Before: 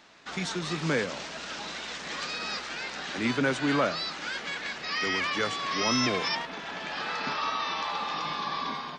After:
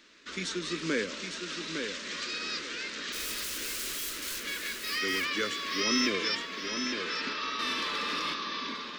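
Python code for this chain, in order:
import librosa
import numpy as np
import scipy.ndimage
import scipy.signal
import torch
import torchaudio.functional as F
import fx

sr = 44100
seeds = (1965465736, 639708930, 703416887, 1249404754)

y = fx.overflow_wrap(x, sr, gain_db=30.5, at=(3.12, 4.44))
y = fx.fixed_phaser(y, sr, hz=320.0, stages=4)
y = fx.echo_feedback(y, sr, ms=858, feedback_pct=22, wet_db=-6.5)
y = fx.leveller(y, sr, passes=1, at=(7.59, 8.34))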